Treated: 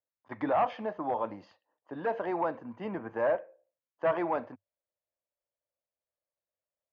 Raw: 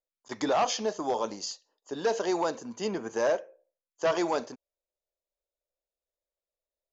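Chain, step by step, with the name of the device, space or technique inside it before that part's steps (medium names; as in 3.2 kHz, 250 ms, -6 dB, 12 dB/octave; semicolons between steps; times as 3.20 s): bass cabinet (cabinet simulation 84–2100 Hz, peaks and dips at 100 Hz +9 dB, 220 Hz -3 dB, 410 Hz -10 dB, 1.4 kHz -3 dB)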